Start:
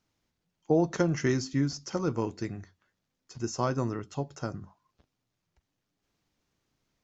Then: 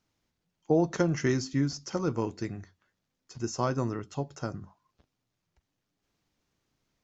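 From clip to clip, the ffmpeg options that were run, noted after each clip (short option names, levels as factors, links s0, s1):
-af anull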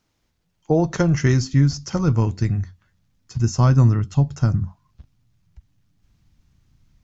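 -af "asubboost=boost=11.5:cutoff=130,volume=2.24"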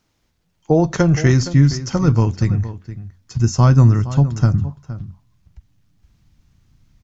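-filter_complex "[0:a]asplit=2[s0][s1];[s1]adelay=466.5,volume=0.2,highshelf=f=4000:g=-10.5[s2];[s0][s2]amix=inputs=2:normalize=0,volume=1.5"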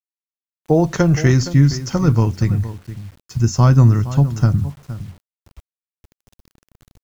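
-af "acrusher=bits=7:mix=0:aa=0.000001"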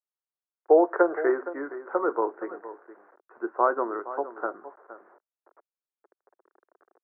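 -af "asuperpass=centerf=760:order=12:qfactor=0.61"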